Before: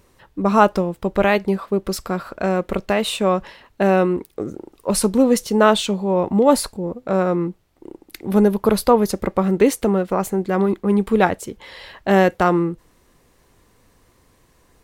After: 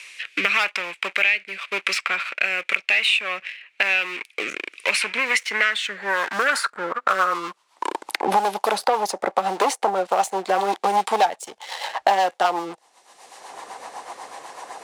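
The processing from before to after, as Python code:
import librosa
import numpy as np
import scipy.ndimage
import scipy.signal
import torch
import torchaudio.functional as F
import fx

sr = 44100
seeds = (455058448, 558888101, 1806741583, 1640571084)

y = scipy.signal.sosfilt(scipy.signal.butter(4, 9900.0, 'lowpass', fs=sr, output='sos'), x)
y = fx.low_shelf(y, sr, hz=470.0, db=6.0)
y = fx.leveller(y, sr, passes=2)
y = fx.rotary_switch(y, sr, hz=0.9, then_hz=8.0, switch_at_s=6.13)
y = np.clip(y, -10.0 ** (-4.0 / 20.0), 10.0 ** (-4.0 / 20.0))
y = fx.filter_sweep_highpass(y, sr, from_hz=2400.0, to_hz=800.0, start_s=5.12, end_s=8.31, q=6.1)
y = fx.band_squash(y, sr, depth_pct=100)
y = y * librosa.db_to_amplitude(-5.5)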